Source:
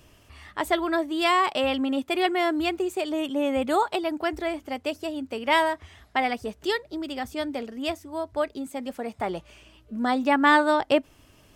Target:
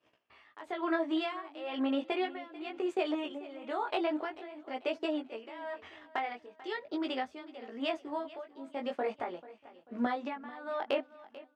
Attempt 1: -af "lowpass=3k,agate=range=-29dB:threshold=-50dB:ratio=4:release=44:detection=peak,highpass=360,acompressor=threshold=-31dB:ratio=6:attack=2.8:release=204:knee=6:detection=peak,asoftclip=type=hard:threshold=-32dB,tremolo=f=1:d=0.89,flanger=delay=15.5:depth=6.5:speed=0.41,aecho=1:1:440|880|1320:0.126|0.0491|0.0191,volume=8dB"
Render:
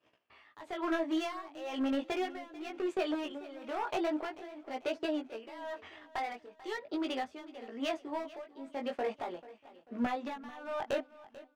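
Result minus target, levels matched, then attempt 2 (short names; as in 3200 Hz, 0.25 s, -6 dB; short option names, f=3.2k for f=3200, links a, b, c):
hard clip: distortion +32 dB
-af "lowpass=3k,agate=range=-29dB:threshold=-50dB:ratio=4:release=44:detection=peak,highpass=360,acompressor=threshold=-31dB:ratio=6:attack=2.8:release=204:knee=6:detection=peak,asoftclip=type=hard:threshold=-22dB,tremolo=f=1:d=0.89,flanger=delay=15.5:depth=6.5:speed=0.41,aecho=1:1:440|880|1320:0.126|0.0491|0.0191,volume=8dB"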